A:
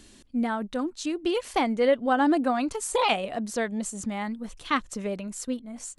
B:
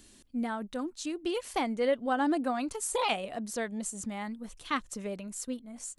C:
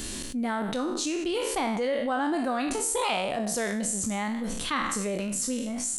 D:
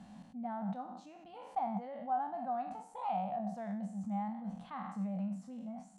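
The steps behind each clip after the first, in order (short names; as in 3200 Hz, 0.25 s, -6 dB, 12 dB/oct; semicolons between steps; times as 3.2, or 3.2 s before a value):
high shelf 9200 Hz +10 dB; gain -6 dB
spectral trails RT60 0.58 s; fast leveller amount 70%; gain -2.5 dB
double band-pass 380 Hz, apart 2 oct; gain -1 dB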